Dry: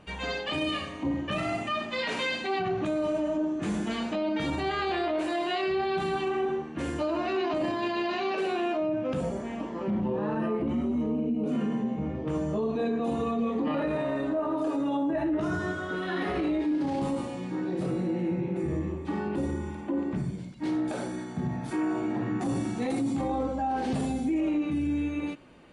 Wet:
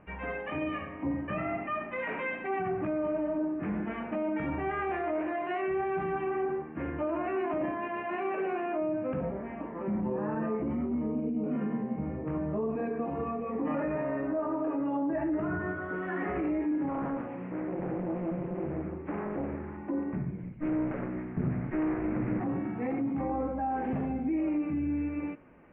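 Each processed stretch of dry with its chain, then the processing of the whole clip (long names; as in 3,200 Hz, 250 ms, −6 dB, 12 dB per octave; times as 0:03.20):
0:16.89–0:19.77: high-pass filter 110 Hz 6 dB per octave + highs frequency-modulated by the lows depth 0.68 ms
0:20.43–0:22.40: lower of the sound and its delayed copy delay 0.45 ms + low-shelf EQ 210 Hz +7 dB + highs frequency-modulated by the lows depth 0.57 ms
whole clip: Butterworth low-pass 2,400 Hz 48 dB per octave; hum removal 115.5 Hz, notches 5; level −2.5 dB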